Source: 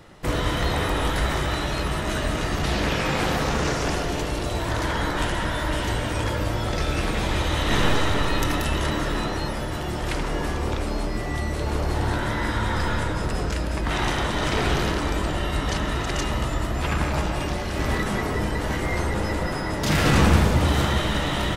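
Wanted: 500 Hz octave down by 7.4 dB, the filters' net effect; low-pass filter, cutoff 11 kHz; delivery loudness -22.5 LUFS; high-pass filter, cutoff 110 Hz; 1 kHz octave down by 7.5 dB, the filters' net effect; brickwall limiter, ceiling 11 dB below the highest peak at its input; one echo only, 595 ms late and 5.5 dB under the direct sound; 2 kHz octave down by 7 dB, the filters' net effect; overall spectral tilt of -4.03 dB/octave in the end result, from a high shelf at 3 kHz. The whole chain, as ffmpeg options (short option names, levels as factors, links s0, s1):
-af "highpass=110,lowpass=11000,equalizer=f=500:t=o:g=-8,equalizer=f=1000:t=o:g=-5.5,equalizer=f=2000:t=o:g=-8,highshelf=f=3000:g=4,alimiter=limit=0.106:level=0:latency=1,aecho=1:1:595:0.531,volume=2.11"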